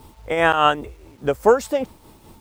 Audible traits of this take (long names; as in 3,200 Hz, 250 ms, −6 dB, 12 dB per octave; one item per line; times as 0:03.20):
tremolo triangle 4.9 Hz, depth 65%
a quantiser's noise floor 10 bits, dither none